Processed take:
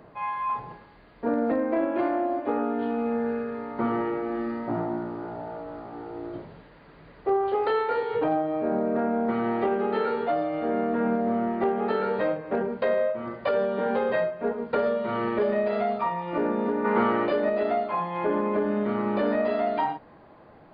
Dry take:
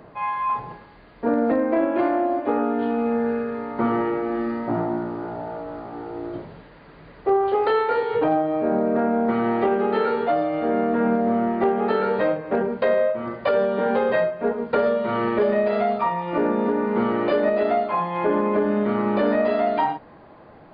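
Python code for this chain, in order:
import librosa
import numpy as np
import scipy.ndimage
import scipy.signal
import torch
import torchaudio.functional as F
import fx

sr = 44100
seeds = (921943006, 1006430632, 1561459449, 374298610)

y = fx.peak_eq(x, sr, hz=1400.0, db=fx.line((16.84, 11.5), (17.25, 5.0)), octaves=2.8, at=(16.84, 17.25), fade=0.02)
y = y * 10.0 ** (-4.5 / 20.0)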